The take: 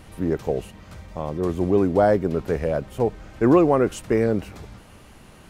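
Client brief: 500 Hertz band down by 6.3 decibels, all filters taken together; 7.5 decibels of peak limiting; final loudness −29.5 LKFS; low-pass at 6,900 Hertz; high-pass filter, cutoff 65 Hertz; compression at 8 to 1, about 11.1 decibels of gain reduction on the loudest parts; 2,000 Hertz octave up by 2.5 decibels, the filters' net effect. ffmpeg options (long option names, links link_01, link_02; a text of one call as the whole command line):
ffmpeg -i in.wav -af "highpass=65,lowpass=6900,equalizer=frequency=500:width_type=o:gain=-8.5,equalizer=frequency=2000:width_type=o:gain=4,acompressor=threshold=-26dB:ratio=8,volume=6dB,alimiter=limit=-17dB:level=0:latency=1" out.wav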